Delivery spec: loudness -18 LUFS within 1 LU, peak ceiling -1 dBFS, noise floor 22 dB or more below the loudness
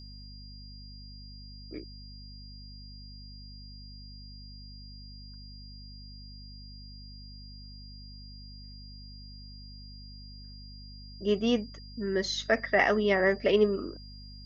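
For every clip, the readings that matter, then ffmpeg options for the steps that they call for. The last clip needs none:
hum 50 Hz; harmonics up to 250 Hz; hum level -45 dBFS; steady tone 4800 Hz; tone level -50 dBFS; loudness -27.5 LUFS; peak -10.5 dBFS; loudness target -18.0 LUFS
-> -af "bandreject=f=50:t=h:w=4,bandreject=f=100:t=h:w=4,bandreject=f=150:t=h:w=4,bandreject=f=200:t=h:w=4,bandreject=f=250:t=h:w=4"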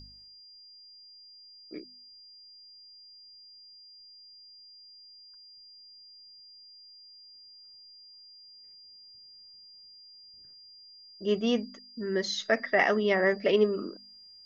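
hum none; steady tone 4800 Hz; tone level -50 dBFS
-> -af "bandreject=f=4.8k:w=30"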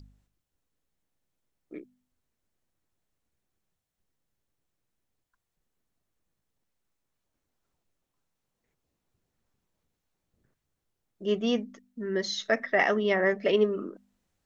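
steady tone none; loudness -27.0 LUFS; peak -10.5 dBFS; loudness target -18.0 LUFS
-> -af "volume=9dB"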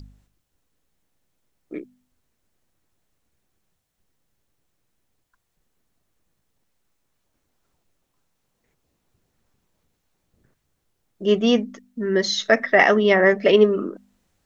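loudness -18.5 LUFS; peak -1.5 dBFS; noise floor -74 dBFS

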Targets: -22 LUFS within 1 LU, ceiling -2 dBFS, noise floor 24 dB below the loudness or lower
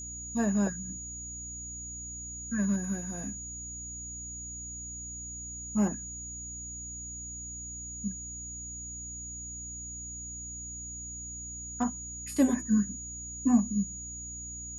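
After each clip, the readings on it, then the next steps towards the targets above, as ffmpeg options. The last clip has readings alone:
hum 60 Hz; harmonics up to 300 Hz; hum level -44 dBFS; steady tone 6800 Hz; tone level -39 dBFS; loudness -34.0 LUFS; peak -13.0 dBFS; loudness target -22.0 LUFS
-> -af "bandreject=f=60:t=h:w=4,bandreject=f=120:t=h:w=4,bandreject=f=180:t=h:w=4,bandreject=f=240:t=h:w=4,bandreject=f=300:t=h:w=4"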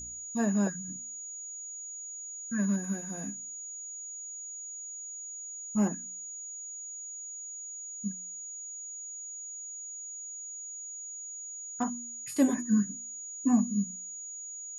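hum none; steady tone 6800 Hz; tone level -39 dBFS
-> -af "bandreject=f=6.8k:w=30"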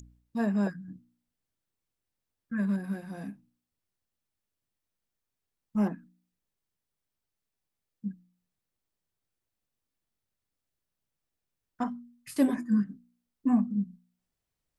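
steady tone none; loudness -31.0 LUFS; peak -14.0 dBFS; loudness target -22.0 LUFS
-> -af "volume=9dB"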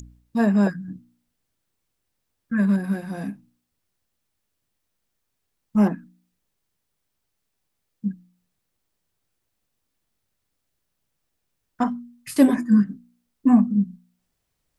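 loudness -22.0 LUFS; peak -5.0 dBFS; noise floor -78 dBFS

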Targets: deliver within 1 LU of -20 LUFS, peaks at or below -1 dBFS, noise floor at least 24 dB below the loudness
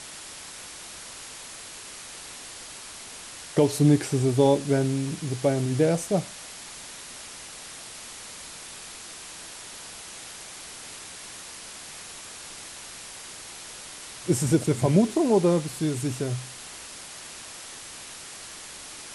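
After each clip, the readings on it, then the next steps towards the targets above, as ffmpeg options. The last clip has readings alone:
noise floor -42 dBFS; noise floor target -53 dBFS; loudness -29.0 LUFS; peak -7.0 dBFS; loudness target -20.0 LUFS
-> -af "afftdn=nr=11:nf=-42"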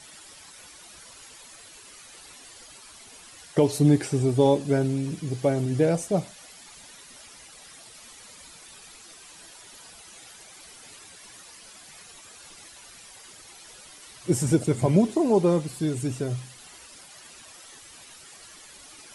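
noise floor -48 dBFS; loudness -24.0 LUFS; peak -7.5 dBFS; loudness target -20.0 LUFS
-> -af "volume=4dB"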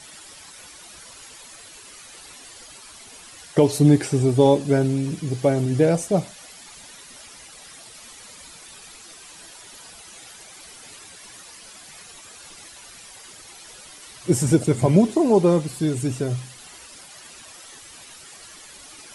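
loudness -20.0 LUFS; peak -3.5 dBFS; noise floor -44 dBFS

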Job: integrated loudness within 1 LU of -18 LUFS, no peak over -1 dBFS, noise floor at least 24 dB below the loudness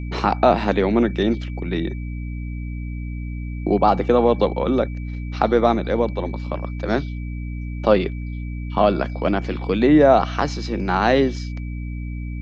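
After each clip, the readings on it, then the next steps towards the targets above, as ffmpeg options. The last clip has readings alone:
hum 60 Hz; harmonics up to 300 Hz; hum level -26 dBFS; steady tone 2300 Hz; tone level -44 dBFS; loudness -21.0 LUFS; peak -2.0 dBFS; loudness target -18.0 LUFS
-> -af "bandreject=f=60:t=h:w=4,bandreject=f=120:t=h:w=4,bandreject=f=180:t=h:w=4,bandreject=f=240:t=h:w=4,bandreject=f=300:t=h:w=4"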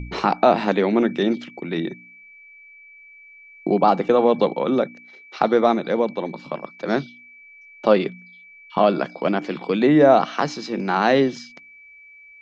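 hum none; steady tone 2300 Hz; tone level -44 dBFS
-> -af "bandreject=f=2.3k:w=30"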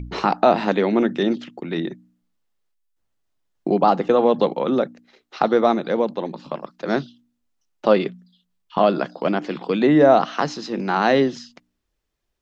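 steady tone none; loudness -20.5 LUFS; peak -2.0 dBFS; loudness target -18.0 LUFS
-> -af "volume=2.5dB,alimiter=limit=-1dB:level=0:latency=1"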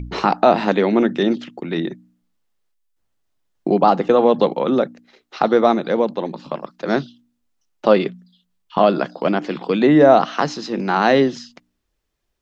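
loudness -18.0 LUFS; peak -1.0 dBFS; noise floor -73 dBFS

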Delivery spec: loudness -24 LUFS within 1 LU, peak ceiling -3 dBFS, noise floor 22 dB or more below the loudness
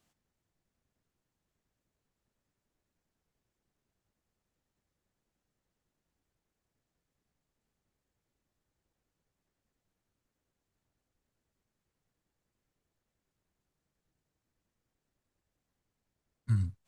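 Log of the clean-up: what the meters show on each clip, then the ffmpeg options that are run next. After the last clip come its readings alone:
loudness -32.5 LUFS; peak -19.0 dBFS; loudness target -24.0 LUFS
-> -af "volume=8.5dB"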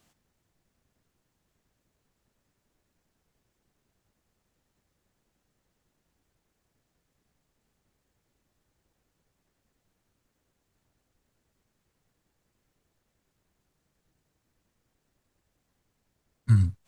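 loudness -24.0 LUFS; peak -10.5 dBFS; noise floor -78 dBFS

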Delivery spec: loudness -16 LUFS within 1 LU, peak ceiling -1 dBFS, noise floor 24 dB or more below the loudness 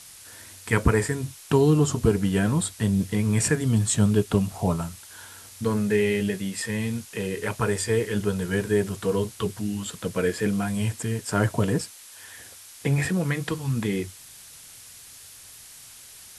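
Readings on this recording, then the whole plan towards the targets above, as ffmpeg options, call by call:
noise floor -46 dBFS; noise floor target -49 dBFS; loudness -25.0 LUFS; peak -5.5 dBFS; loudness target -16.0 LUFS
-> -af "afftdn=nr=6:nf=-46"
-af "volume=9dB,alimiter=limit=-1dB:level=0:latency=1"

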